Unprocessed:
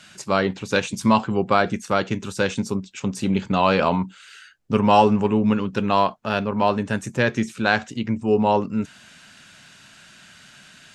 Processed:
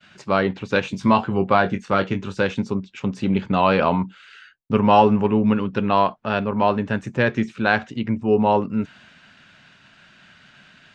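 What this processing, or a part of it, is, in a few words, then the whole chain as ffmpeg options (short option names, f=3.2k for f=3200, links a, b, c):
hearing-loss simulation: -filter_complex "[0:a]lowpass=3.3k,agate=range=-33dB:threshold=-47dB:ratio=3:detection=peak,asettb=1/sr,asplit=3[a][b][c];[a]atrim=end=0.834[d];[b]atrim=start=0.83:end=2.41,asetpts=PTS-STARTPTS,afade=t=in:d=0.004:c=qsin,afade=t=out:st=1.576:d=0.004:c=qsin,asplit=2[e][f];[f]adelay=21,volume=-8dB[g];[e][g]amix=inputs=2:normalize=0,atrim=end_sample=69678[h];[c]atrim=start=2.406[i];[d][h]acrossfade=d=0.004:c1=hsin:c2=qsin[j];[j][i]acrossfade=d=0.004:c1=qsin:c2=hsin,volume=1dB"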